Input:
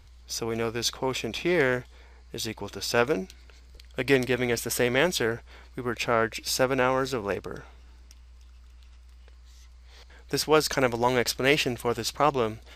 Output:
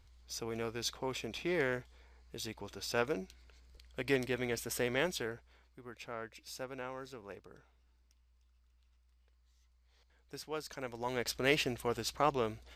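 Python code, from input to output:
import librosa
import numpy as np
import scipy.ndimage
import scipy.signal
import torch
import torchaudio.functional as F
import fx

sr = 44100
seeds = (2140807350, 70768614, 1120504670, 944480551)

y = fx.gain(x, sr, db=fx.line((5.02, -10.0), (5.79, -19.5), (10.78, -19.5), (11.4, -8.0)))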